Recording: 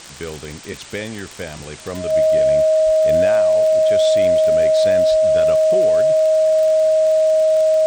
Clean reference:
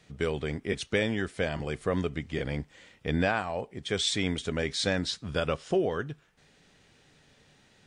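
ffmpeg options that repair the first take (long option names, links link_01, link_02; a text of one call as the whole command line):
ffmpeg -i in.wav -filter_complex "[0:a]adeclick=threshold=4,bandreject=frequency=630:width=30,asplit=3[link_01][link_02][link_03];[link_01]afade=type=out:start_time=2.85:duration=0.02[link_04];[link_02]highpass=frequency=140:width=0.5412,highpass=frequency=140:width=1.3066,afade=type=in:start_time=2.85:duration=0.02,afade=type=out:start_time=2.97:duration=0.02[link_05];[link_03]afade=type=in:start_time=2.97:duration=0.02[link_06];[link_04][link_05][link_06]amix=inputs=3:normalize=0,asplit=3[link_07][link_08][link_09];[link_07]afade=type=out:start_time=5.1:duration=0.02[link_10];[link_08]highpass=frequency=140:width=0.5412,highpass=frequency=140:width=1.3066,afade=type=in:start_time=5.1:duration=0.02,afade=type=out:start_time=5.22:duration=0.02[link_11];[link_09]afade=type=in:start_time=5.22:duration=0.02[link_12];[link_10][link_11][link_12]amix=inputs=3:normalize=0,afwtdn=0.016" out.wav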